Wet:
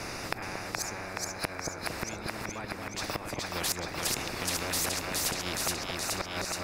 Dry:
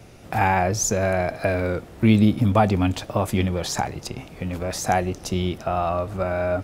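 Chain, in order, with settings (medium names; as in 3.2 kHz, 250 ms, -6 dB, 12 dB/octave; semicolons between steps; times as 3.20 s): graphic EQ with 31 bands 315 Hz +6 dB, 3.15 kHz -12 dB, 5 kHz +6 dB; in parallel at -10 dB: saturation -17.5 dBFS, distortion -10 dB; on the sum: inverted gate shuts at -12 dBFS, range -25 dB; treble shelf 4.1 kHz -8.5 dB; on a send: two-band feedback delay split 660 Hz, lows 229 ms, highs 423 ms, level -3 dB; on the sum: spectrum-flattening compressor 4:1; trim -2.5 dB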